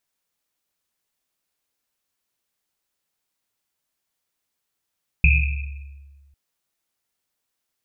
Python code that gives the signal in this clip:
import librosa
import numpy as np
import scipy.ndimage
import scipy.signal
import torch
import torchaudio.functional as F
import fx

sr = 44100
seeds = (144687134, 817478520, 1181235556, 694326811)

y = fx.risset_drum(sr, seeds[0], length_s=1.1, hz=70.0, decay_s=1.64, noise_hz=2500.0, noise_width_hz=240.0, noise_pct=40)